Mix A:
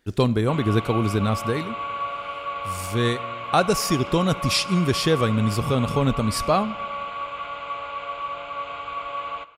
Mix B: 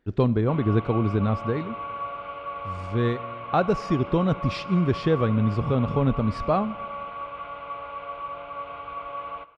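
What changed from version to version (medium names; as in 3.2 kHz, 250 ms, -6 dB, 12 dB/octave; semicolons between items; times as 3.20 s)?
master: add tape spacing loss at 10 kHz 35 dB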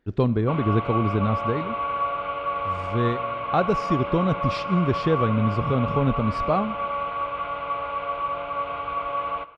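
background +7.0 dB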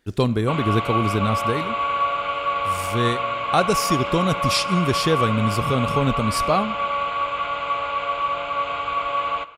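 master: remove tape spacing loss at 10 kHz 35 dB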